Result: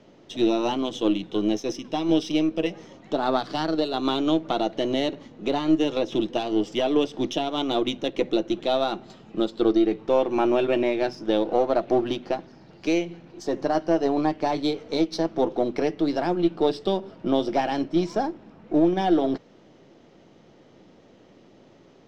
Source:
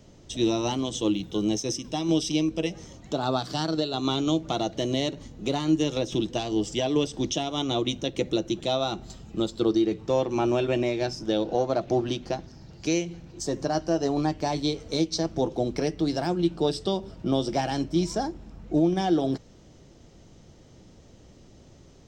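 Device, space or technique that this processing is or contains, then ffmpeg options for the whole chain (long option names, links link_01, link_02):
crystal radio: -af "highpass=230,lowpass=3100,aeval=exprs='if(lt(val(0),0),0.708*val(0),val(0))':channel_layout=same,volume=5dB"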